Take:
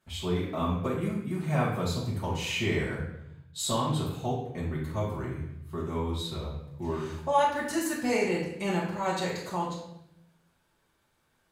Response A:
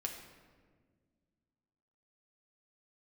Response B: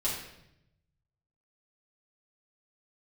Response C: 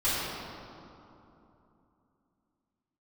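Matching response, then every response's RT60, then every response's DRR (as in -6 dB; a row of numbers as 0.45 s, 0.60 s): B; 1.6 s, 0.80 s, 3.0 s; 1.0 dB, -7.5 dB, -14.0 dB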